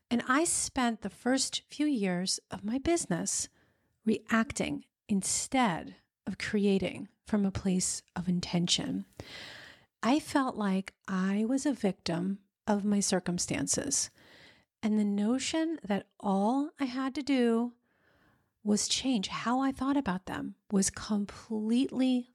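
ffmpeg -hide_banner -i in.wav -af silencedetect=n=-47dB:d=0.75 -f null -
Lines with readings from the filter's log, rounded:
silence_start: 17.70
silence_end: 18.65 | silence_duration: 0.95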